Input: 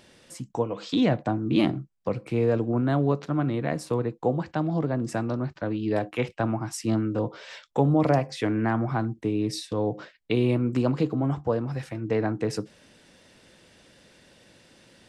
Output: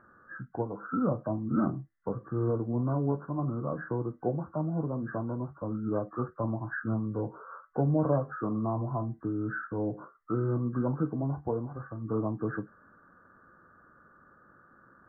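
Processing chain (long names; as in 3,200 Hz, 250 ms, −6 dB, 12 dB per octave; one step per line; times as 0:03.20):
hearing-aid frequency compression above 1,100 Hz 4 to 1
formants moved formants −2 semitones
flanger 0.16 Hz, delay 9 ms, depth 7.9 ms, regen −60%
level −1.5 dB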